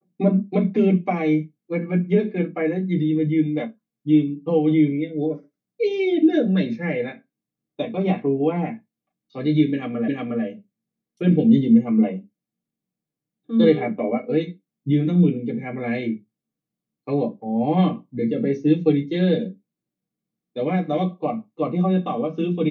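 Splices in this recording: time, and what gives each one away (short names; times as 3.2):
10.08 repeat of the last 0.36 s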